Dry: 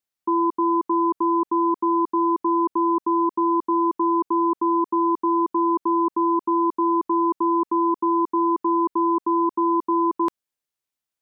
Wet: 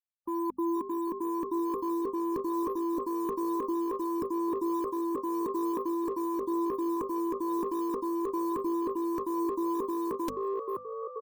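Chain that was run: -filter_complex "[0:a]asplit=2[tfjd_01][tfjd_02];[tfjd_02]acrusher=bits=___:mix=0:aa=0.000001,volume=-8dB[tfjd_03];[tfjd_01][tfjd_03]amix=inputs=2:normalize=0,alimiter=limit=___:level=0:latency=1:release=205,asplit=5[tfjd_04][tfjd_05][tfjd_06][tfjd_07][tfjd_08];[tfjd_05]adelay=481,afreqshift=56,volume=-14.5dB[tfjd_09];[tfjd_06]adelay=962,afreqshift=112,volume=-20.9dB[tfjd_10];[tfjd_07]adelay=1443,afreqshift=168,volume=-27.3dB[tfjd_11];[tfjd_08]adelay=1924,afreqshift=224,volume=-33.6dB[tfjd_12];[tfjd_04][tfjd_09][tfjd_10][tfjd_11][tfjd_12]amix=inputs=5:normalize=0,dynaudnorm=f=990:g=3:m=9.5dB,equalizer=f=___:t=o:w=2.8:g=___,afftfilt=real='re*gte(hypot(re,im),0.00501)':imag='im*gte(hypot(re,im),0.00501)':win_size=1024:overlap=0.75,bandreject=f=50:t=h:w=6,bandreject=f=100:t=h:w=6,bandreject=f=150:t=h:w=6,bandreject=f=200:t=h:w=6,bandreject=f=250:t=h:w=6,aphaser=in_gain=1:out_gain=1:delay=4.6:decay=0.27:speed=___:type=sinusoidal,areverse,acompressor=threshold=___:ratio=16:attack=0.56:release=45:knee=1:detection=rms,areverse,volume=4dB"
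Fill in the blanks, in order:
5, -14dB, 900, -15, 0.45, -31dB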